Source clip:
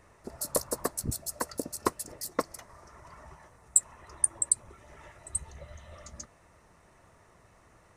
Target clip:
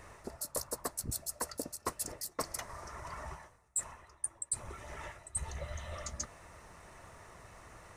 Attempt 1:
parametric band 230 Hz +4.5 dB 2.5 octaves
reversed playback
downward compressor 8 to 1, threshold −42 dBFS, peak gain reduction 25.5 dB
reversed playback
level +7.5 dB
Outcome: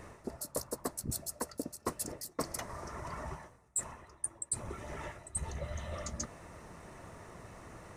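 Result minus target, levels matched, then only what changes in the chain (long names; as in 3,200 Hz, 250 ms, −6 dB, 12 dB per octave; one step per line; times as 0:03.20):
250 Hz band +5.5 dB
change: parametric band 230 Hz −4.5 dB 2.5 octaves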